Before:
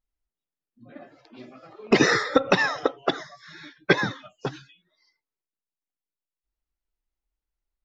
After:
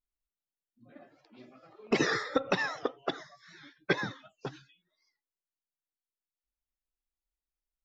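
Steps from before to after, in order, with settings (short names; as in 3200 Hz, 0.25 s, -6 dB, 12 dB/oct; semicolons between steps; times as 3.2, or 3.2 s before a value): record warp 78 rpm, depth 100 cents; gain -9 dB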